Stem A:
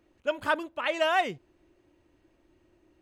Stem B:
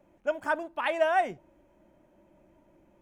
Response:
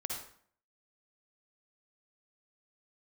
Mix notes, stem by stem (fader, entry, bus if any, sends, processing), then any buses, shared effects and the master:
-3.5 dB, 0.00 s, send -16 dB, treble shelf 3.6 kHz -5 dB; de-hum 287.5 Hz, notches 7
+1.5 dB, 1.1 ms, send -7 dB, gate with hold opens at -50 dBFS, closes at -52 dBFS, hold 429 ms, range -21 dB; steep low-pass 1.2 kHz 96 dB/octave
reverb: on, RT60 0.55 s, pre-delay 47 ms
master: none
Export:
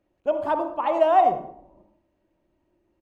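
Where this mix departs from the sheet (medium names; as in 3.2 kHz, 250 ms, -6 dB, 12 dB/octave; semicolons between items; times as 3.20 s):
stem A -3.5 dB -> -10.0 dB; reverb return +8.5 dB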